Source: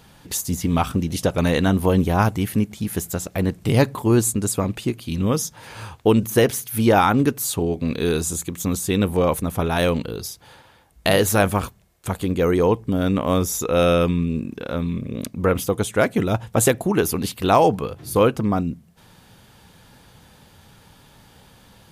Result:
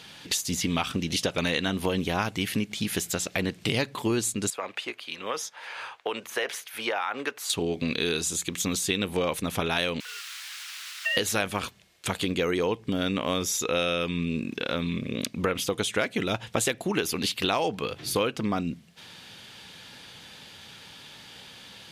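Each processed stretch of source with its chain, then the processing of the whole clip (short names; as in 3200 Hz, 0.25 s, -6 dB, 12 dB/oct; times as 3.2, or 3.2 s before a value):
4.5–7.5 HPF 150 Hz 6 dB/oct + three-band isolator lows -24 dB, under 510 Hz, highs -13 dB, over 2100 Hz + compressor, threshold -23 dBFS
10–11.17 sine-wave speech + requantised 6-bit, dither triangular + ladder high-pass 1100 Hz, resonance 45%
whole clip: weighting filter D; compressor 4:1, threshold -24 dBFS; high shelf 7700 Hz -5 dB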